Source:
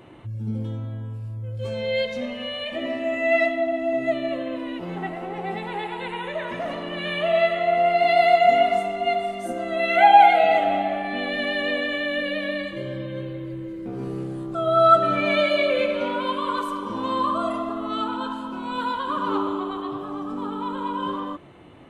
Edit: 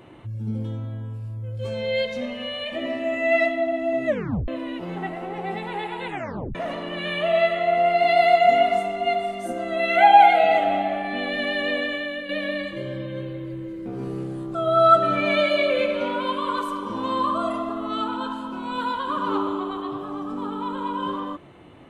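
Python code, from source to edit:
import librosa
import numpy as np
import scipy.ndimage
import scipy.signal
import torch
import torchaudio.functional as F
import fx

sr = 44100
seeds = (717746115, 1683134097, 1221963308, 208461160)

y = fx.edit(x, sr, fx.tape_stop(start_s=4.07, length_s=0.41),
    fx.tape_stop(start_s=6.08, length_s=0.47),
    fx.fade_out_to(start_s=11.83, length_s=0.46, floor_db=-9.0), tone=tone)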